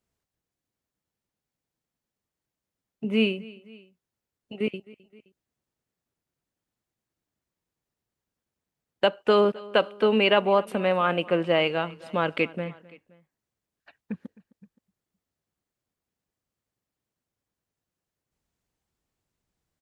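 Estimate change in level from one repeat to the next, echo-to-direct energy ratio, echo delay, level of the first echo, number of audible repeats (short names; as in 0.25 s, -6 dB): -4.5 dB, -20.0 dB, 0.261 s, -21.5 dB, 2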